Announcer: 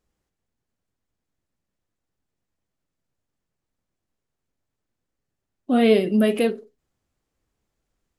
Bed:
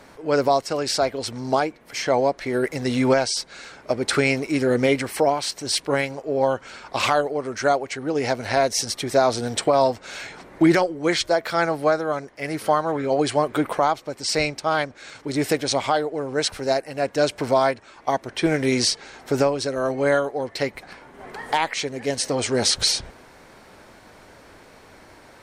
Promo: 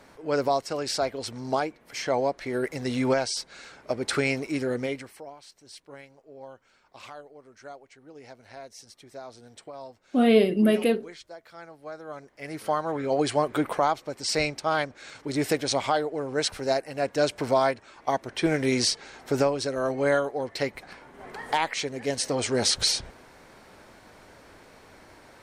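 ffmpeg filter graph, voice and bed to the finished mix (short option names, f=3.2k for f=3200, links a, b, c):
-filter_complex "[0:a]adelay=4450,volume=-2dB[a];[1:a]volume=14.5dB,afade=t=out:st=4.47:d=0.74:silence=0.125893,afade=t=in:st=11.82:d=1.38:silence=0.1[b];[a][b]amix=inputs=2:normalize=0"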